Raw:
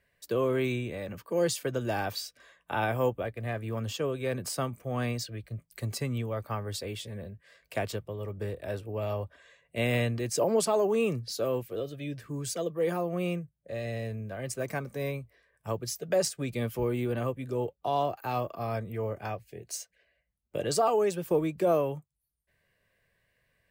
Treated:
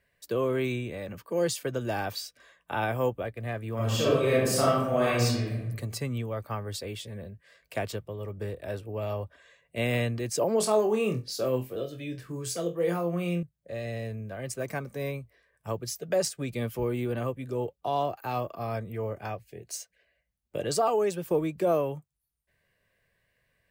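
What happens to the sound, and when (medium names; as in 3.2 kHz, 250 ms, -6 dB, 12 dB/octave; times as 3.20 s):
3.75–5.65 s: reverb throw, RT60 1 s, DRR -8 dB
10.58–13.43 s: flutter echo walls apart 4 m, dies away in 0.22 s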